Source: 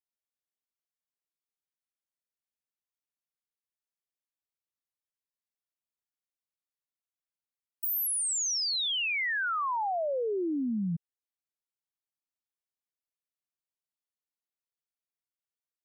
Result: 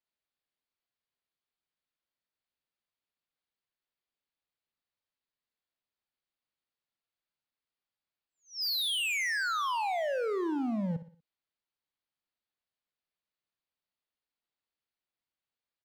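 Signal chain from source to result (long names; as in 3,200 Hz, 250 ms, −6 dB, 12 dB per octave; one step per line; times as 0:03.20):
Butterworth low-pass 4,900 Hz 96 dB per octave
hard clipping −34.5 dBFS, distortion −11 dB
repeating echo 60 ms, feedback 42%, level −13 dB
level +4 dB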